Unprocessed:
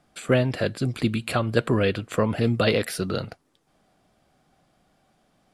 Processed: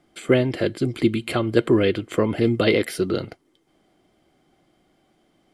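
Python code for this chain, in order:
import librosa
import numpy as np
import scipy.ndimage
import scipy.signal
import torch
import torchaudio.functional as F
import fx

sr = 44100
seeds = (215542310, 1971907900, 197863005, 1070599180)

y = fx.small_body(x, sr, hz=(340.0, 2100.0, 3100.0), ring_ms=30, db=12)
y = F.gain(torch.from_numpy(y), -1.5).numpy()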